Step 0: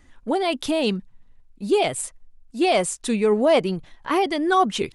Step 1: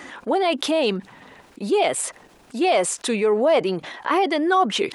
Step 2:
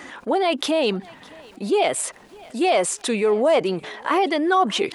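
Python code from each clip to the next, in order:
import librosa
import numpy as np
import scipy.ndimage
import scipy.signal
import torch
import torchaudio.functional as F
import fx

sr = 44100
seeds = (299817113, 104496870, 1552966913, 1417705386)

y1 = scipy.signal.sosfilt(scipy.signal.butter(2, 360.0, 'highpass', fs=sr, output='sos'), x)
y1 = fx.high_shelf(y1, sr, hz=4400.0, db=-9.5)
y1 = fx.env_flatten(y1, sr, amount_pct=50)
y2 = fx.echo_thinned(y1, sr, ms=608, feedback_pct=40, hz=420.0, wet_db=-22.5)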